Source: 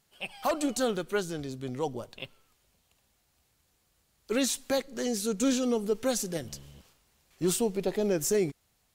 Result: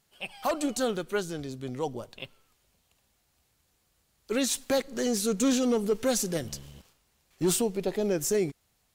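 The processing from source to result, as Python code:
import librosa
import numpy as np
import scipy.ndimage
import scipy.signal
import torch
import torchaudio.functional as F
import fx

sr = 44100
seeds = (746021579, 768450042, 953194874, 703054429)

y = fx.leveller(x, sr, passes=1, at=(4.51, 7.62))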